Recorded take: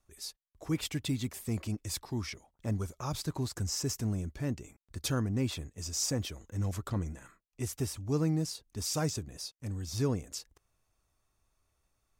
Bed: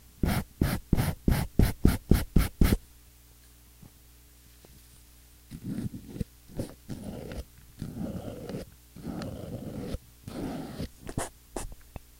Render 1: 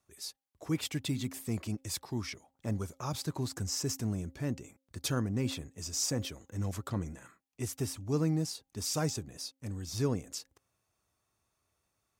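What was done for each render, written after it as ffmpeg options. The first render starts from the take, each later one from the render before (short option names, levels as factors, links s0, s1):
-af "highpass=94,bandreject=f=266.7:t=h:w=4,bandreject=f=533.4:t=h:w=4,bandreject=f=800.1:t=h:w=4"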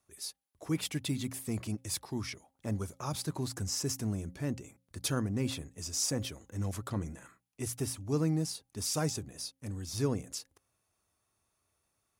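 -af "equalizer=f=10000:w=7.5:g=10.5,bandreject=f=60:t=h:w=6,bandreject=f=120:t=h:w=6,bandreject=f=180:t=h:w=6"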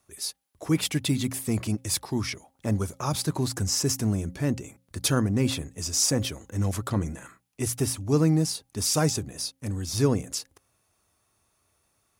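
-af "volume=2.66"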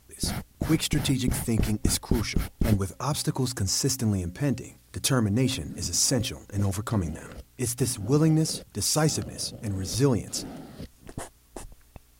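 -filter_complex "[1:a]volume=0.631[s0];[0:a][s0]amix=inputs=2:normalize=0"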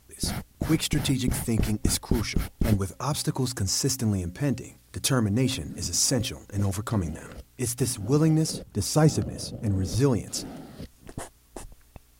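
-filter_complex "[0:a]asettb=1/sr,asplit=3[s0][s1][s2];[s0]atrim=end=8.514[s3];[s1]atrim=start=8.51:end=10,asetpts=PTS-STARTPTS,afade=t=in:d=0.004:c=qsin,afade=t=out:st=1.486:d=0.004:c=qsin,tiltshelf=f=1100:g=5[s4];[s2]atrim=start=9.996[s5];[s3][s4]acrossfade=d=0.004:c1=hsin:c2=qsin[s6];[s6][s5]acrossfade=d=0.004:c1=qsin:c2=hsin"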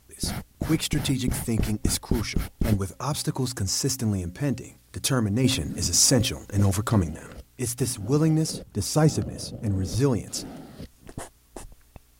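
-filter_complex "[0:a]asettb=1/sr,asplit=3[s0][s1][s2];[s0]atrim=end=5.444[s3];[s1]atrim=start=5.44:end=7.04,asetpts=PTS-STARTPTS,afade=t=in:d=0.004:c=qsin,afade=t=out:st=1.596:d=0.004:c=qsin,acontrast=24[s4];[s2]atrim=start=7.036[s5];[s3][s4]acrossfade=d=0.004:c1=hsin:c2=qsin[s6];[s6][s5]acrossfade=d=0.004:c1=qsin:c2=hsin"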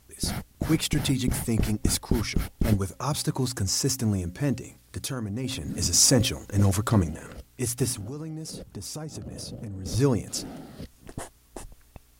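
-filter_complex "[0:a]asettb=1/sr,asplit=3[s0][s1][s2];[s0]atrim=end=5.004[s3];[s1]atrim=start=5:end=5.68,asetpts=PTS-STARTPTS,afade=t=in:d=0.004:c=qsin,afade=t=out:st=0.676:d=0.004:c=qsin,acompressor=threshold=0.0282:ratio=2.5:attack=3.2:release=140:knee=1:detection=peak[s4];[s2]atrim=start=5.676[s5];[s3][s4]acrossfade=d=0.004:c1=hsin:c2=qsin[s6];[s6][s5]acrossfade=d=0.004:c1=qsin:c2=hsin,asettb=1/sr,asplit=3[s7][s8][s9];[s7]atrim=end=8.014[s10];[s8]atrim=start=8.01:end=9.86,asetpts=PTS-STARTPTS,afade=t=in:d=0.004:c=qsin,afade=t=out:st=1.846:d=0.004:c=qsin,acompressor=threshold=0.0251:ratio=16:attack=3.2:release=140:knee=1:detection=peak[s11];[s9]atrim=start=9.856[s12];[s10][s11]acrossfade=d=0.004:c1=hsin:c2=qsin[s13];[s13][s12]acrossfade=d=0.004:c1=qsin:c2=hsin"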